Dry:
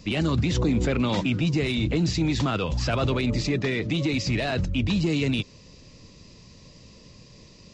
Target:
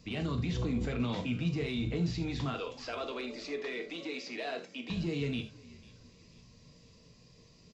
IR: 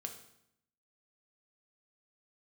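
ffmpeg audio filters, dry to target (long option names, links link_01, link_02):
-filter_complex "[0:a]asettb=1/sr,asplit=3[link_01][link_02][link_03];[link_01]atrim=end=2.544[link_04];[link_02]atrim=start=2.54:end=4.9,asetpts=PTS-STARTPTS,afade=type=in:duration=0.004:curve=qsin,afade=type=out:start_time=2.356:duration=0.004:curve=qsin,highpass=frequency=310:width=0.5412,highpass=frequency=310:width=1.3066[link_05];[link_03]atrim=start=4.896[link_06];[link_04][link_05]acrossfade=duration=0.004:curve1=hsin:curve2=qsin[link_07];[link_07][link_06]acrossfade=duration=0.004:curve1=qsin:curve2=hsin,asplit=4[link_08][link_09][link_10][link_11];[link_09]adelay=494,afreqshift=-47,volume=-22dB[link_12];[link_10]adelay=988,afreqshift=-94,volume=-28.6dB[link_13];[link_11]adelay=1482,afreqshift=-141,volume=-35.1dB[link_14];[link_08][link_12][link_13][link_14]amix=inputs=4:normalize=0[link_15];[1:a]atrim=start_sample=2205,atrim=end_sample=3969[link_16];[link_15][link_16]afir=irnorm=-1:irlink=0,acrossover=split=5800[link_17][link_18];[link_18]acompressor=threshold=-57dB:ratio=4:attack=1:release=60[link_19];[link_17][link_19]amix=inputs=2:normalize=0,volume=-7.5dB"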